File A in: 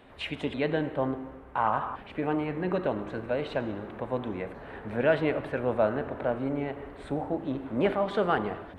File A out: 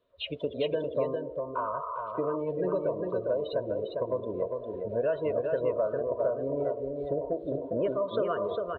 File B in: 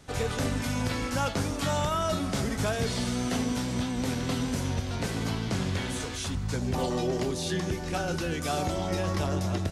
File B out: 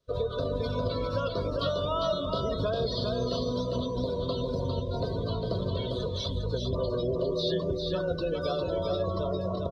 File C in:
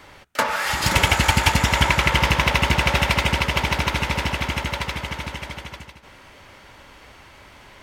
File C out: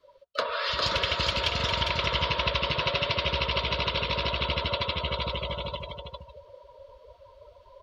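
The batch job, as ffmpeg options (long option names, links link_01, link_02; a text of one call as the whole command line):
ffmpeg -i in.wav -af "equalizer=frequency=250:width_type=o:width=1:gain=-7,equalizer=frequency=500:width_type=o:width=1:gain=9,equalizer=frequency=1000:width_type=o:width=1:gain=4,equalizer=frequency=2000:width_type=o:width=1:gain=-8,equalizer=frequency=4000:width_type=o:width=1:gain=10,equalizer=frequency=8000:width_type=o:width=1:gain=-7,areverse,acompressor=mode=upward:threshold=-36dB:ratio=2.5,areverse,afftdn=noise_reduction=26:noise_floor=-31,adynamicequalizer=threshold=0.0251:dfrequency=2800:dqfactor=0.8:tfrequency=2800:tqfactor=0.8:attack=5:release=100:ratio=0.375:range=2.5:mode=boostabove:tftype=bell,acompressor=threshold=-28dB:ratio=4,asuperstop=centerf=810:order=20:qfactor=4.1,aecho=1:1:403:0.596,volume=1dB" out.wav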